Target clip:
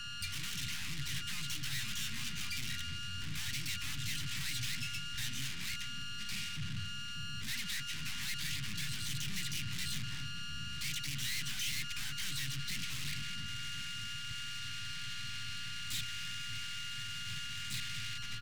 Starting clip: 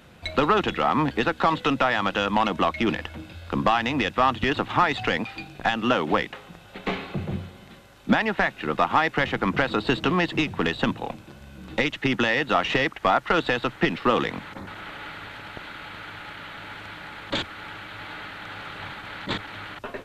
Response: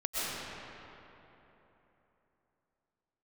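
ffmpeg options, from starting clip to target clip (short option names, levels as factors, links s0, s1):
-filter_complex "[0:a]adynamicequalizer=threshold=0.0158:dfrequency=2100:dqfactor=0.91:tfrequency=2100:tqfactor=0.91:attack=5:release=100:ratio=0.375:range=2.5:mode=boostabove:tftype=bell,aeval=exprs='val(0)+0.0562*sin(2*PI*1300*n/s)':c=same,equalizer=f=125:t=o:w=0.33:g=11,equalizer=f=1250:t=o:w=0.33:g=-8,equalizer=f=6300:t=o:w=0.33:g=-12,equalizer=f=10000:t=o:w=0.33:g=-6,asplit=4[s0][s1][s2][s3];[s1]asetrate=37084,aresample=44100,atempo=1.18921,volume=0.355[s4];[s2]asetrate=52444,aresample=44100,atempo=0.840896,volume=0.282[s5];[s3]asetrate=88200,aresample=44100,atempo=0.5,volume=0.562[s6];[s0][s4][s5][s6]amix=inputs=4:normalize=0,aeval=exprs='(tanh(50.1*val(0)+0.5)-tanh(0.5))/50.1':c=same,acrossover=split=160|1700[s7][s8][s9];[s7]aecho=1:1:646:0.473[s10];[s8]acrusher=bits=3:mix=0:aa=0.5[s11];[s10][s11][s9]amix=inputs=3:normalize=0,asetrate=48000,aresample=44100"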